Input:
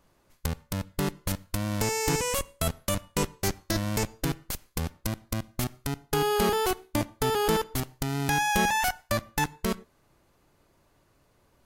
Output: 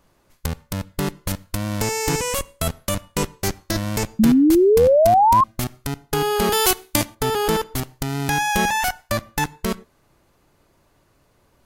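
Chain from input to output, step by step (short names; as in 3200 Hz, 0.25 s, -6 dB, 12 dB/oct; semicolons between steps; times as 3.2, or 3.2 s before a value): 4.19–5.44 painted sound rise 210–1100 Hz -18 dBFS; 6.52–7.15 high shelf 2200 Hz +12 dB; gain +4.5 dB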